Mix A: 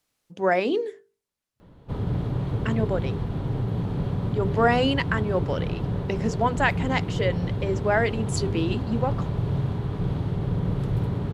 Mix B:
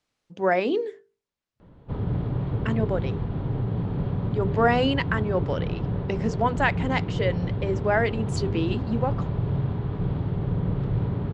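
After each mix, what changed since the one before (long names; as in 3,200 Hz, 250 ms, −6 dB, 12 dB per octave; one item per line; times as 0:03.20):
background: add high-frequency loss of the air 150 metres
master: add high-frequency loss of the air 72 metres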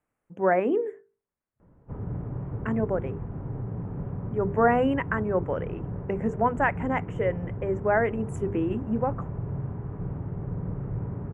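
background −6.5 dB
master: add Butterworth band-reject 4,400 Hz, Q 0.58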